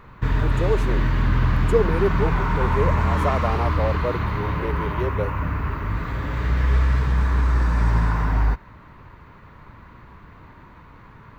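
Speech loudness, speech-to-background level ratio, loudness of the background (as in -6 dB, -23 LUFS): -27.5 LUFS, -4.5 dB, -23.0 LUFS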